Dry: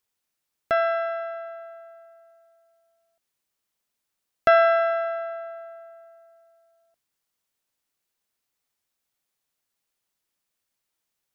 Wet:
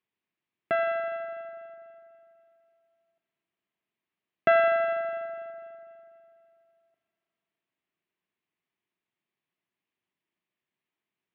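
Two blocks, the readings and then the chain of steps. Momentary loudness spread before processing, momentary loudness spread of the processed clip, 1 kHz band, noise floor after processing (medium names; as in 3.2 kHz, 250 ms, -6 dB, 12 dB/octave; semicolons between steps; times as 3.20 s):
22 LU, 21 LU, -5.5 dB, under -85 dBFS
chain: cabinet simulation 120–2900 Hz, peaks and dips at 180 Hz +5 dB, 360 Hz +5 dB, 520 Hz -8 dB, 800 Hz -5 dB, 1.4 kHz -8 dB; spring tank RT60 3.1 s, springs 41 ms, chirp 25 ms, DRR 9.5 dB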